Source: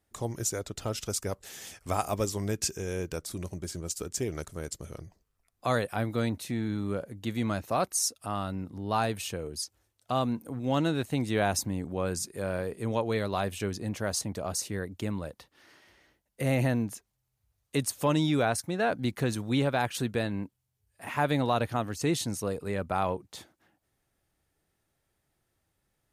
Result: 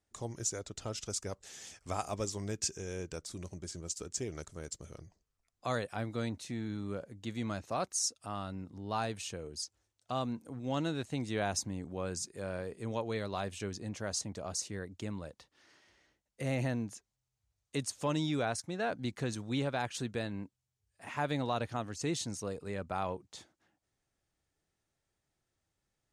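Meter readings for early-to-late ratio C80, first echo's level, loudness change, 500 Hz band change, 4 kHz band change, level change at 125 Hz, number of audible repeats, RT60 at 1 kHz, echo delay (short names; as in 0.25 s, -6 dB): none, none, -6.5 dB, -7.0 dB, -4.5 dB, -7.0 dB, none, none, none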